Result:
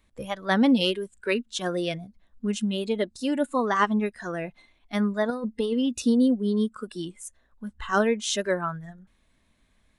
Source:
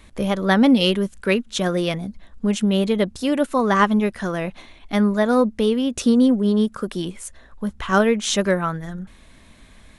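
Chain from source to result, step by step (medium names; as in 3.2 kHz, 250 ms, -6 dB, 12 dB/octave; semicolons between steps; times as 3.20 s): spectral noise reduction 13 dB; 5.30–5.97 s: compressor with a negative ratio -20 dBFS, ratio -0.5; trim -5 dB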